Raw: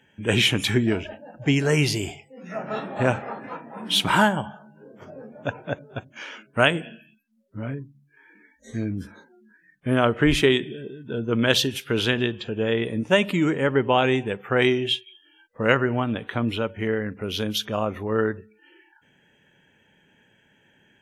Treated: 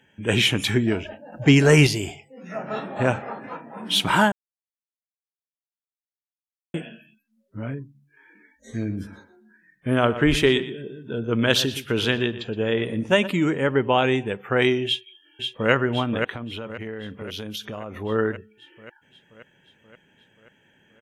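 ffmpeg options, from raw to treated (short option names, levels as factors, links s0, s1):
-filter_complex "[0:a]asettb=1/sr,asplit=3[s0][s1][s2];[s0]atrim=end=1.324[s3];[s1]atrim=start=1.32:end=1.87,asetpts=PTS-STARTPTS,afade=t=in:d=0.004:c=qsin,afade=t=out:st=0.546:d=0.004:c=qsin,acontrast=67[s4];[s2]atrim=start=1.866[s5];[s3][s4]acrossfade=d=0.004:c1=hsin:c2=qsin[s6];[s6][s5]acrossfade=d=0.004:c1=qsin:c2=hsin,asplit=3[s7][s8][s9];[s7]afade=t=out:st=8.79:d=0.02[s10];[s8]asplit=2[s11][s12];[s12]adelay=120,lowpass=f=3300:p=1,volume=0.224,asplit=2[s13][s14];[s14]adelay=120,lowpass=f=3300:p=1,volume=0.17[s15];[s11][s13][s15]amix=inputs=3:normalize=0,afade=t=in:st=8.79:d=0.02,afade=t=out:st=13.26:d=0.02[s16];[s9]afade=t=in:st=13.26:d=0.02[s17];[s10][s16][s17]amix=inputs=3:normalize=0,asplit=2[s18][s19];[s19]afade=t=in:st=14.86:d=0.01,afade=t=out:st=15.71:d=0.01,aecho=0:1:530|1060|1590|2120|2650|3180|3710|4240|4770|5300:0.562341|0.365522|0.237589|0.154433|0.100381|0.0652479|0.0424112|0.0275673|0.0179187|0.0116472[s20];[s18][s20]amix=inputs=2:normalize=0,asettb=1/sr,asplit=3[s21][s22][s23];[s21]atrim=end=16.334[s24];[s22]atrim=start=16.33:end=17.96,asetpts=PTS-STARTPTS,afade=t=in:d=0.004:c=qsin,afade=t=out:st=1.626:d=0.004:c=qsin,acompressor=threshold=0.0355:ratio=6:attack=3.2:release=140:knee=1:detection=peak[s25];[s23]atrim=start=17.956[s26];[s24][s25]acrossfade=d=0.004:c1=hsin:c2=qsin[s27];[s27][s26]acrossfade=d=0.004:c1=qsin:c2=hsin,asplit=3[s28][s29][s30];[s28]atrim=end=4.32,asetpts=PTS-STARTPTS,afade=t=out:st=4.316:d=0.004:c=hsin[s31];[s29]atrim=start=4.32:end=6.74,asetpts=PTS-STARTPTS,volume=0[s32];[s30]atrim=start=6.74,asetpts=PTS-STARTPTS,afade=t=in:d=0.004:c=hsin[s33];[s31][s32][s33]concat=n=3:v=0:a=1"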